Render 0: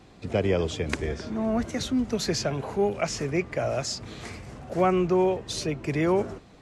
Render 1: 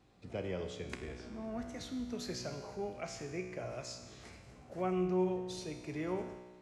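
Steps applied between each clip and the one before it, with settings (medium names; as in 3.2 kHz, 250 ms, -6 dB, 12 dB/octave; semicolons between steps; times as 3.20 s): feedback comb 61 Hz, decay 1.4 s, harmonics all, mix 80%; trim -3.5 dB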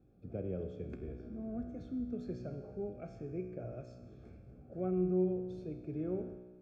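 boxcar filter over 45 samples; trim +2.5 dB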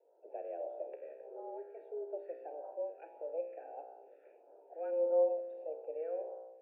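phase shifter stages 2, 1.6 Hz, lowest notch 790–1800 Hz; mistuned SSB +160 Hz 330–2200 Hz; trim +6 dB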